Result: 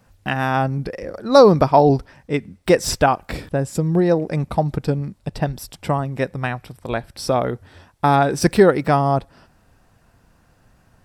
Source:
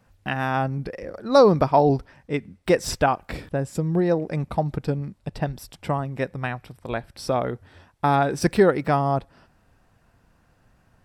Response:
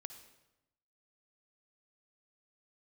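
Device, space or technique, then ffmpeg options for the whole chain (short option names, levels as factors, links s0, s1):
exciter from parts: -filter_complex "[0:a]asplit=2[s0][s1];[s1]highpass=3300,asoftclip=type=tanh:threshold=0.0447,volume=0.447[s2];[s0][s2]amix=inputs=2:normalize=0,volume=1.68"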